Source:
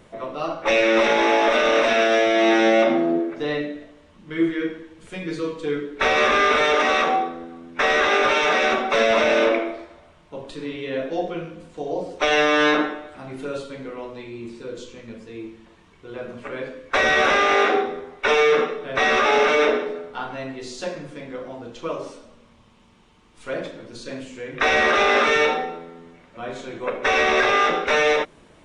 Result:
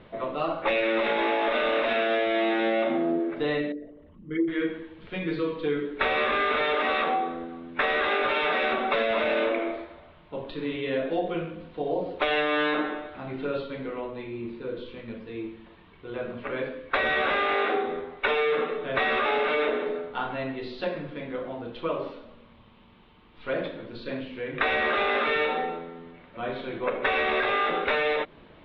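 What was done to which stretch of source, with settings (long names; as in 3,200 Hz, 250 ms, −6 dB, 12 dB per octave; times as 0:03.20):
0:03.72–0:04.48: spectral envelope exaggerated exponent 2
0:14.00–0:14.86: high-shelf EQ 4,900 Hz −11 dB
whole clip: downward compressor, threshold −22 dBFS; Butterworth low-pass 4,000 Hz 48 dB per octave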